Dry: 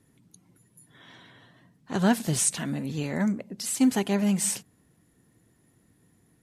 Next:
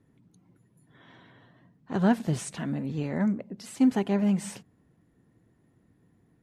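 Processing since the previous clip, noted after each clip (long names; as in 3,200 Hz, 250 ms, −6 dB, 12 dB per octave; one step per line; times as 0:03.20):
low-pass filter 1,400 Hz 6 dB per octave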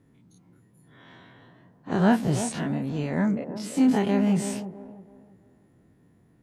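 every bin's largest magnitude spread in time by 60 ms
delay with a band-pass on its return 329 ms, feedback 32%, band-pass 470 Hz, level −8 dB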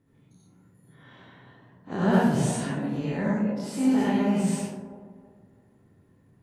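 convolution reverb RT60 0.75 s, pre-delay 58 ms, DRR −6 dB
level −7 dB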